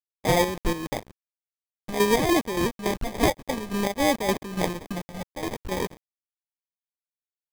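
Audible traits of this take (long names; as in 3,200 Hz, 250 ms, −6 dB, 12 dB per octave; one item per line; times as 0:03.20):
a quantiser's noise floor 6 bits, dither none
phaser sweep stages 8, 0.53 Hz, lowest notch 360–2,300 Hz
aliases and images of a low sample rate 1,400 Hz, jitter 0%
chopped level 3.5 Hz, depth 60%, duty 55%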